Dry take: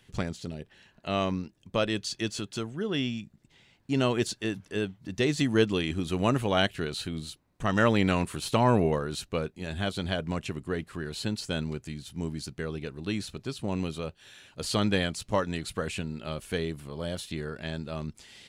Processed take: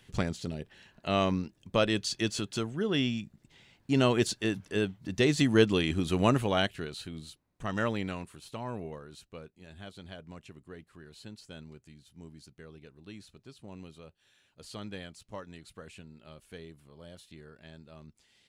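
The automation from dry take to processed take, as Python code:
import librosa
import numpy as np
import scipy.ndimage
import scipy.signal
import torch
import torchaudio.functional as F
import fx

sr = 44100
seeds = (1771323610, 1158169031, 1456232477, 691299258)

y = fx.gain(x, sr, db=fx.line((6.27, 1.0), (6.94, -7.0), (7.83, -7.0), (8.4, -15.5)))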